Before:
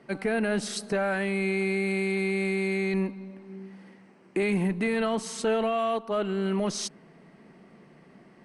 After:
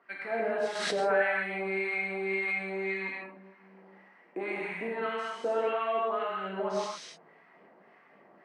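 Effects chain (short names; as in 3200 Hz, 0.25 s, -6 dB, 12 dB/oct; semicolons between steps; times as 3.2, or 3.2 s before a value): LFO band-pass sine 1.8 Hz 530–2100 Hz; non-linear reverb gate 0.31 s flat, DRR -4.5 dB; 0.75–2.67 backwards sustainer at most 27 dB/s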